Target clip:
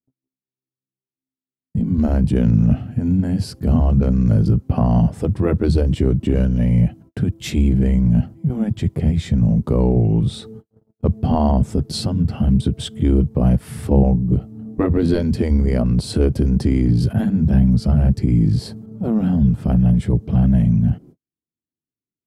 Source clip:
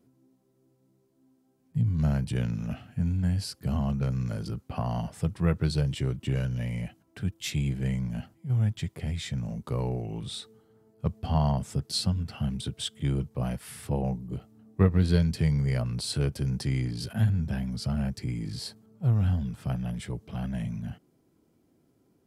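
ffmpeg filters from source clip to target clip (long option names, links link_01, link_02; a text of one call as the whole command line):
ffmpeg -i in.wav -filter_complex "[0:a]afftfilt=real='re*lt(hypot(re,im),0.316)':imag='im*lt(hypot(re,im),0.316)':win_size=1024:overlap=0.75,tiltshelf=frequency=670:gain=10,agate=range=-51dB:threshold=-50dB:ratio=16:detection=peak,asplit=2[link_01][link_02];[link_02]acompressor=threshold=-37dB:ratio=6,volume=-1dB[link_03];[link_01][link_03]amix=inputs=2:normalize=0,volume=9dB" out.wav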